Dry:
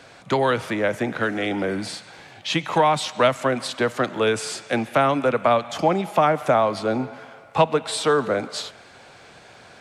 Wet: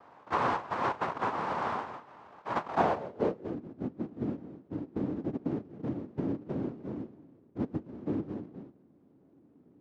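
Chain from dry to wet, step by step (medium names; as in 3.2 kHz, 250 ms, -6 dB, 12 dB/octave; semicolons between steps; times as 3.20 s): noise-vocoded speech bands 1; low-pass sweep 1 kHz -> 290 Hz, 2.63–3.63 s; trim -5 dB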